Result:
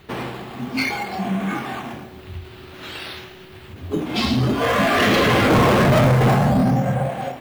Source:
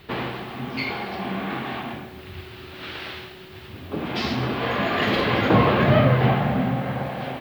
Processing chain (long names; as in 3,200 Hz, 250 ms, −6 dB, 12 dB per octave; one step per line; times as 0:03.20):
noise reduction from a noise print of the clip's start 9 dB
in parallel at −8 dB: sample-and-hold swept by an LFO 10×, swing 100% 0.53 Hz
on the sum: soft clipping −19 dBFS, distortion −7 dB
every ending faded ahead of time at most 130 dB per second
level +7 dB